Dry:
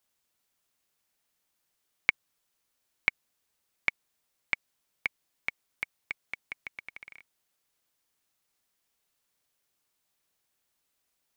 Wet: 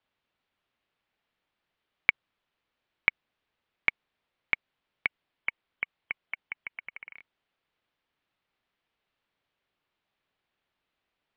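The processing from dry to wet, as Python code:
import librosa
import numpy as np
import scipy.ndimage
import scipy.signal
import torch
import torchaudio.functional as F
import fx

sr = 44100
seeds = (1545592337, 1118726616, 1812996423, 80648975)

y = scipy.signal.sosfilt(scipy.signal.butter(4, 3500.0, 'lowpass', fs=sr, output='sos'), x)
y = fx.spec_gate(y, sr, threshold_db=-25, keep='strong', at=(5.06, 7.15), fade=0.02)
y = y * librosa.db_to_amplitude(2.5)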